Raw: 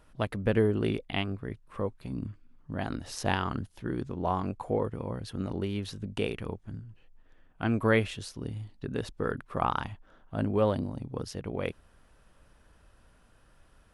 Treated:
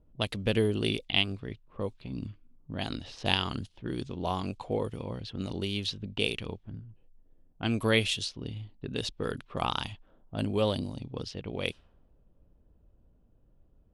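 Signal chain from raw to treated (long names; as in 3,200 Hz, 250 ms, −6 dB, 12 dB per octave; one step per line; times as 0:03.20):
low-pass that shuts in the quiet parts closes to 390 Hz, open at −27.5 dBFS
high shelf with overshoot 2,300 Hz +11.5 dB, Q 1.5
level −1.5 dB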